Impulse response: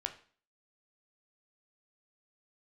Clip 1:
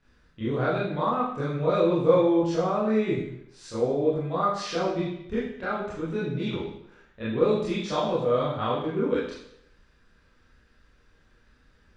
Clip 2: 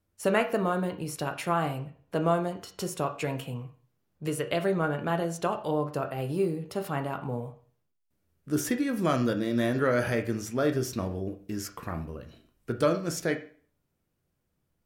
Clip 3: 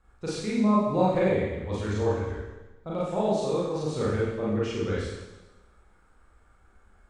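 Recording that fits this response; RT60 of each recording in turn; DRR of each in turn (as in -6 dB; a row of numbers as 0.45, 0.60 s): 2; 0.75, 0.45, 1.1 s; -10.0, 5.0, -7.0 dB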